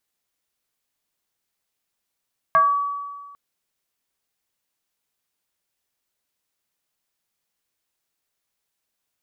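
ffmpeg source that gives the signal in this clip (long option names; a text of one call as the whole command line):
ffmpeg -f lavfi -i "aevalsrc='0.282*pow(10,-3*t/1.56)*sin(2*PI*1140*t+0.73*pow(10,-3*t/0.39)*sin(2*PI*0.43*1140*t))':duration=0.8:sample_rate=44100" out.wav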